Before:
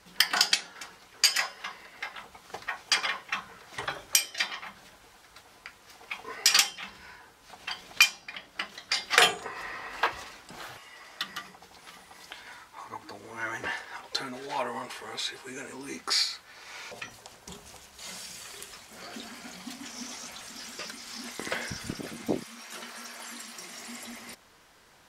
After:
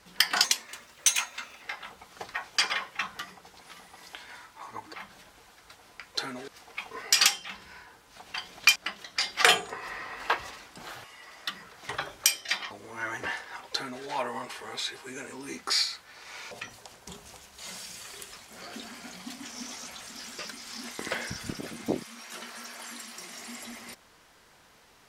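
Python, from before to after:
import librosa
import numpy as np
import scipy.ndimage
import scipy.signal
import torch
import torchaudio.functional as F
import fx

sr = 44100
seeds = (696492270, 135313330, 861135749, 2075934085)

y = fx.edit(x, sr, fx.speed_span(start_s=0.44, length_s=1.52, speed=1.28),
    fx.swap(start_s=3.52, length_s=1.08, other_s=11.36, other_length_s=1.75),
    fx.cut(start_s=8.09, length_s=0.4),
    fx.duplicate(start_s=14.12, length_s=0.33, to_s=5.81), tone=tone)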